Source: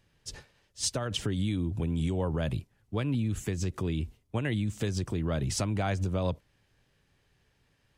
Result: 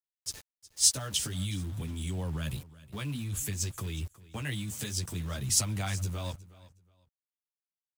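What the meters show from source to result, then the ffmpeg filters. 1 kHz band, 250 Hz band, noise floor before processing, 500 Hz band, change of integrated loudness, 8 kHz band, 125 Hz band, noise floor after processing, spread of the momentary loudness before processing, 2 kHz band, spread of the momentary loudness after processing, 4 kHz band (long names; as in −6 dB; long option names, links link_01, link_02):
−5.5 dB, −7.5 dB, −71 dBFS, −10.5 dB, 0.0 dB, +9.0 dB, −3.5 dB, below −85 dBFS, 6 LU, −1.5 dB, 15 LU, +4.0 dB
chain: -filter_complex "[0:a]aemphasis=mode=production:type=50fm,acrossover=split=210|790[link_01][link_02][link_03];[link_02]acompressor=threshold=-44dB:ratio=6[link_04];[link_01][link_04][link_03]amix=inputs=3:normalize=0,flanger=delay=7.9:depth=8.2:regen=-11:speed=0.54:shape=triangular,aeval=exprs='val(0)*gte(abs(val(0)),0.00447)':channel_layout=same,asplit=2[link_05][link_06];[link_06]aecho=0:1:366|732:0.112|0.0269[link_07];[link_05][link_07]amix=inputs=2:normalize=0,adynamicequalizer=threshold=0.00501:dfrequency=3200:dqfactor=0.7:tfrequency=3200:tqfactor=0.7:attack=5:release=100:ratio=0.375:range=2.5:mode=boostabove:tftype=highshelf"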